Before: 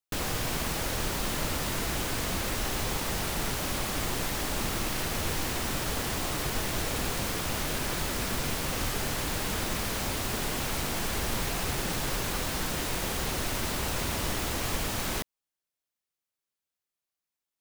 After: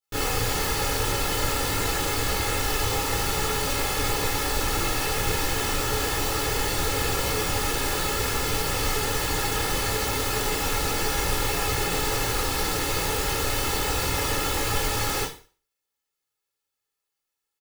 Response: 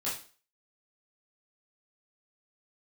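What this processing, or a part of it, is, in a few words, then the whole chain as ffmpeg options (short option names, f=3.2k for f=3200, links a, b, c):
microphone above a desk: -filter_complex "[0:a]aecho=1:1:2.3:0.63[a];[1:a]atrim=start_sample=2205[b];[a][b]afir=irnorm=-1:irlink=0"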